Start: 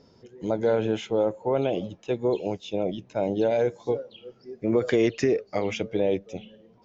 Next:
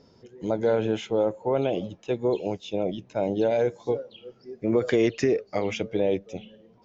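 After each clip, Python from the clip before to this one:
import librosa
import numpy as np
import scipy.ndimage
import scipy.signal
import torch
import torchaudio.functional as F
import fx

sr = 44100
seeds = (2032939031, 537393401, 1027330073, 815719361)

y = x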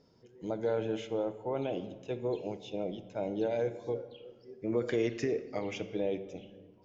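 y = fx.room_shoebox(x, sr, seeds[0], volume_m3=1200.0, walls='mixed', distance_m=0.52)
y = F.gain(torch.from_numpy(y), -9.0).numpy()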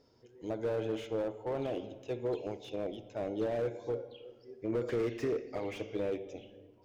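y = fx.peak_eq(x, sr, hz=180.0, db=-14.0, octaves=0.35)
y = fx.slew_limit(y, sr, full_power_hz=17.0)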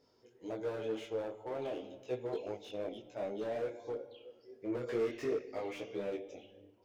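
y = fx.low_shelf(x, sr, hz=180.0, db=-9.5)
y = fx.detune_double(y, sr, cents=13)
y = F.gain(torch.from_numpy(y), 2.0).numpy()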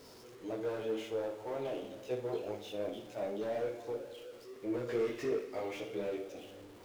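y = x + 0.5 * 10.0 ** (-51.0 / 20.0) * np.sign(x)
y = fx.room_flutter(y, sr, wall_m=10.0, rt60_s=0.33)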